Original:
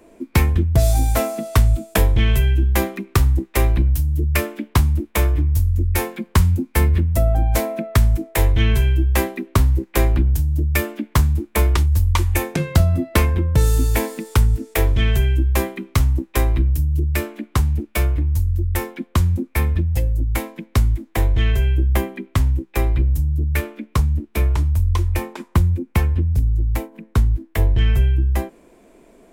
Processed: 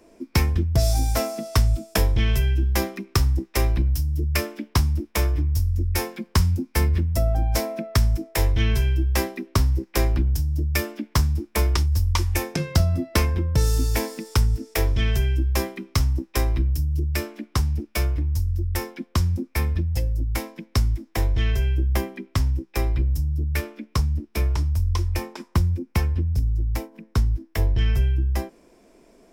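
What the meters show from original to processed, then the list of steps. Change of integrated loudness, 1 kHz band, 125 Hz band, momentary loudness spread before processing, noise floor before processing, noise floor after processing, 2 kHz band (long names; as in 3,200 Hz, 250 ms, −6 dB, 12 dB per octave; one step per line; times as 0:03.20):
−4.5 dB, −4.5 dB, −4.5 dB, 5 LU, −54 dBFS, −58 dBFS, −4.5 dB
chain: parametric band 5,300 Hz +12.5 dB 0.34 octaves
level −4.5 dB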